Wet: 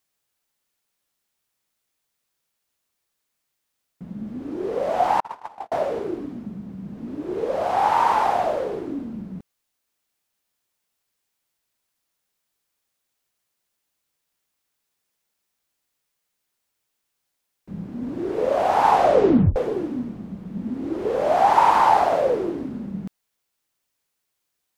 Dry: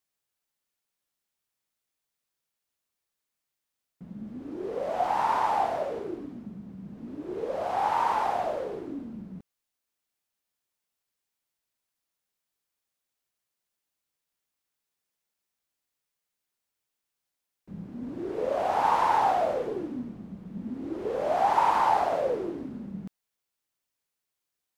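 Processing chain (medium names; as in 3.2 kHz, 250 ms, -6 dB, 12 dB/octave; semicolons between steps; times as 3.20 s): 5.20–5.72 s: gate -21 dBFS, range -50 dB; 18.87 s: tape stop 0.69 s; trim +7 dB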